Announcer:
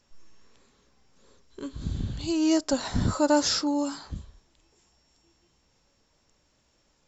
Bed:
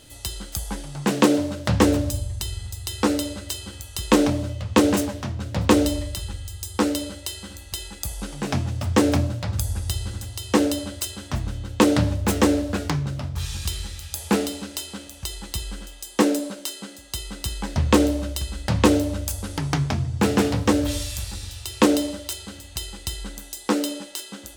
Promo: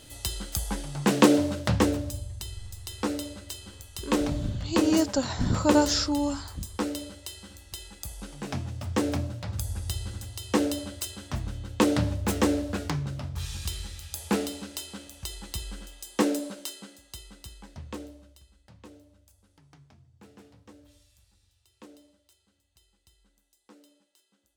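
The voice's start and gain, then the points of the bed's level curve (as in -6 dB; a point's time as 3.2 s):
2.45 s, -0.5 dB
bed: 1.58 s -1 dB
1.97 s -8.5 dB
9.25 s -8.5 dB
9.9 s -5.5 dB
16.62 s -5.5 dB
18.81 s -33 dB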